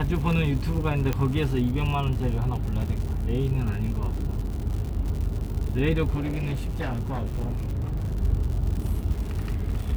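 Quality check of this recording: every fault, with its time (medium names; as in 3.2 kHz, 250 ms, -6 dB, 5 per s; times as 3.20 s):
crackle 140 per s -32 dBFS
1.13 s: pop -12 dBFS
6.14–8.19 s: clipped -24.5 dBFS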